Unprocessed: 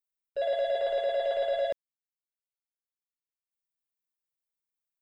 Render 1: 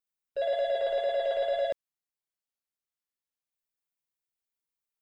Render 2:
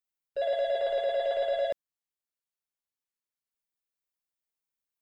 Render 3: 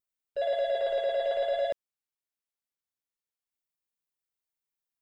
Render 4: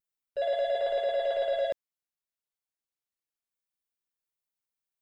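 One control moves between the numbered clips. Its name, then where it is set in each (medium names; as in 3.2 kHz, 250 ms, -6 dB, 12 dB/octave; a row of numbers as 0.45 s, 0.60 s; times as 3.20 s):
vibrato, rate: 2.1 Hz, 10 Hz, 0.75 Hz, 0.41 Hz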